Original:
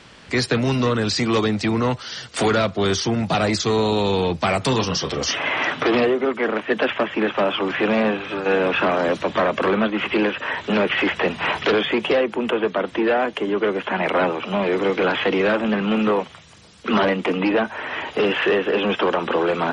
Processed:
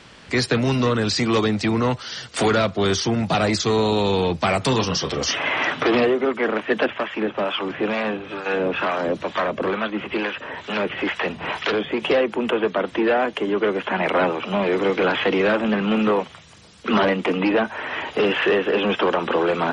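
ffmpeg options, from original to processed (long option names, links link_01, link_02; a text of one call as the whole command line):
ffmpeg -i in.wav -filter_complex "[0:a]asettb=1/sr,asplit=3[link_01][link_02][link_03];[link_01]atrim=end=6.864[link_04];[link_02]atrim=start=6.86:end=12.02,asetpts=PTS-STARTPTS,afade=type=in:duration=0.004:curve=qsin,afade=type=out:start_time=5.156:duration=0.004:curve=qsin,acrossover=split=680[link_05][link_06];[link_05]aeval=exprs='val(0)*(1-0.7/2+0.7/2*cos(2*PI*2.2*n/s))':channel_layout=same[link_07];[link_06]aeval=exprs='val(0)*(1-0.7/2-0.7/2*cos(2*PI*2.2*n/s))':channel_layout=same[link_08];[link_07][link_08]amix=inputs=2:normalize=0[link_09];[link_03]atrim=start=12.016[link_10];[link_04][link_09]acrossfade=duration=0.004:curve1=hsin:curve2=qsin[link_11];[link_11][link_10]acrossfade=duration=0.004:curve1=qsin:curve2=hsin" out.wav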